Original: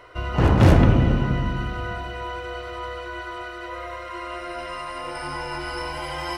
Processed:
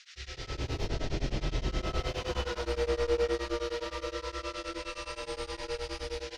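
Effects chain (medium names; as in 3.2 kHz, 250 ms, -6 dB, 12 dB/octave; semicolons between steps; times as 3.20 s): Doppler pass-by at 2.25 s, 15 m/s, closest 2.5 m; gate with hold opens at -48 dBFS; high-order bell 1.3 kHz -8.5 dB; comb 2.3 ms, depth 89%; peak limiter -36.5 dBFS, peak gain reduction 15.5 dB; level rider gain up to 9 dB; saturation -39 dBFS, distortion -8 dB; band noise 1.5–5.8 kHz -54 dBFS; early reflections 32 ms -5 dB, 47 ms -3.5 dB; reverberation RT60 0.95 s, pre-delay 85 ms, DRR -9 dB; tremolo of two beating tones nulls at 9.6 Hz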